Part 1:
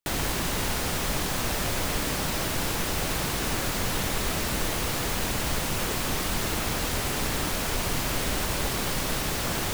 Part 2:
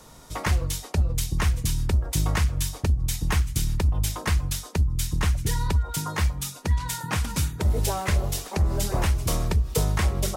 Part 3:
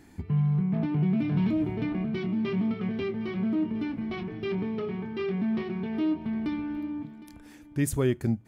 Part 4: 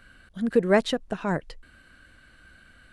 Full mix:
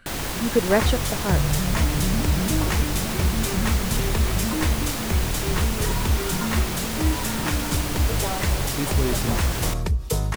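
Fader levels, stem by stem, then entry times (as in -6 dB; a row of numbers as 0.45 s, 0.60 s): -0.5 dB, -0.5 dB, -1.5 dB, +0.5 dB; 0.00 s, 0.35 s, 1.00 s, 0.00 s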